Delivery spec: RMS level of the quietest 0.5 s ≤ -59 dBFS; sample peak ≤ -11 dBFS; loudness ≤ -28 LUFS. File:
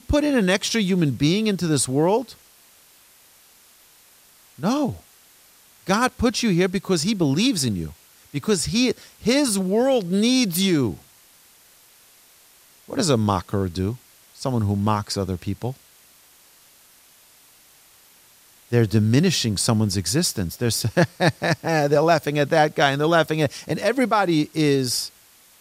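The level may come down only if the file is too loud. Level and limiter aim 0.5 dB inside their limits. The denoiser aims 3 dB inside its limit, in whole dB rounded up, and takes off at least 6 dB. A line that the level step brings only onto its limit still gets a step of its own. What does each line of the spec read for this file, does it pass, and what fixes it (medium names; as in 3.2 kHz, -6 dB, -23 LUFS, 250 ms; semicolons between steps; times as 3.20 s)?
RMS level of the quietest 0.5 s -53 dBFS: fail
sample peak -5.0 dBFS: fail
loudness -21.0 LUFS: fail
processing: trim -7.5 dB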